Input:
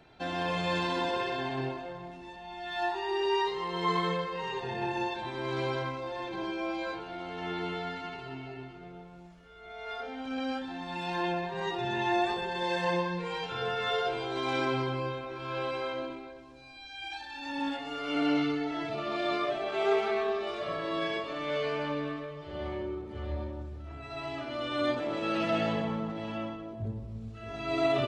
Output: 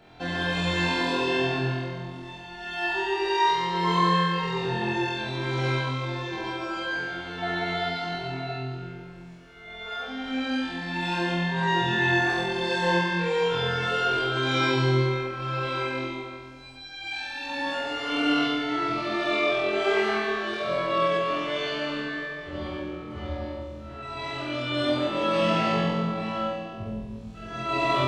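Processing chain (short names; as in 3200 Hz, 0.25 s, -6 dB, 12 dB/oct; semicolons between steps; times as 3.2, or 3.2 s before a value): 7.42–8.55 small resonant body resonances 690/1500/4000 Hz, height 14 dB; on a send: flutter echo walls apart 4 m, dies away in 1.2 s; on the sum: gain +2 dB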